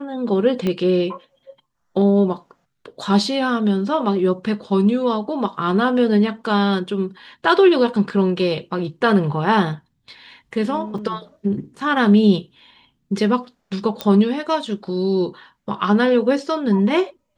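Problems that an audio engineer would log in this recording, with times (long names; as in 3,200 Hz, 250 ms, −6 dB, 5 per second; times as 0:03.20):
0:00.67: click −11 dBFS
0:10.98: drop-out 4.1 ms
0:14.01: click −9 dBFS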